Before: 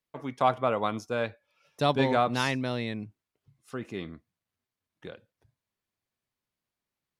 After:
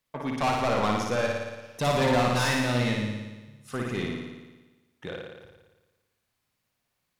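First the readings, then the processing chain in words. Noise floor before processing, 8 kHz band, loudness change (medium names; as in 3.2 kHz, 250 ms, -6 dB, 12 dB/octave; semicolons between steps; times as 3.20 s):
under -85 dBFS, +9.5 dB, +2.0 dB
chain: peaking EQ 360 Hz -4 dB 0.99 oct; saturation -30 dBFS, distortion -6 dB; flutter echo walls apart 9.8 m, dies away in 1.2 s; trim +7 dB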